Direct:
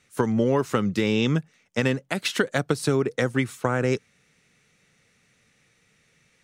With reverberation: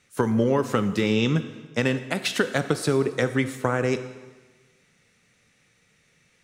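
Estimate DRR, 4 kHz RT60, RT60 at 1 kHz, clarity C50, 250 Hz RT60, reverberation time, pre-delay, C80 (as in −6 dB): 10.0 dB, 1.2 s, 1.3 s, 12.0 dB, 1.3 s, 1.3 s, 7 ms, 13.5 dB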